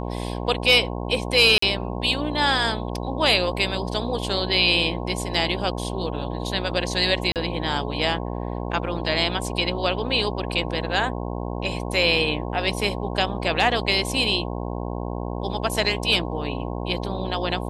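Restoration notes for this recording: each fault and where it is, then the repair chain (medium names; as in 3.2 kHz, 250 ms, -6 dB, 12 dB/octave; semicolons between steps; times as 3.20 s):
buzz 60 Hz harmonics 18 -29 dBFS
1.58–1.62 s: dropout 44 ms
7.32–7.36 s: dropout 38 ms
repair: de-hum 60 Hz, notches 18; interpolate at 1.58 s, 44 ms; interpolate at 7.32 s, 38 ms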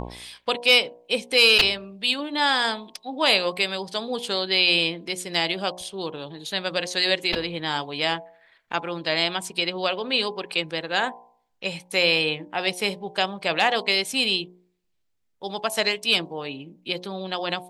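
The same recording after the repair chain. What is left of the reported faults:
nothing left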